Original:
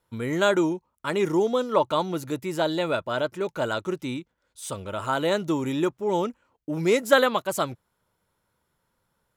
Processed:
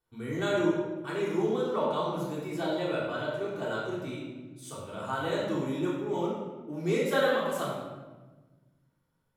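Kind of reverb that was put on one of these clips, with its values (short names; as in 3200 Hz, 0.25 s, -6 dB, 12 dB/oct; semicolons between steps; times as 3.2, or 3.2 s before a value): shoebox room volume 910 m³, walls mixed, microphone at 3.5 m; gain -14 dB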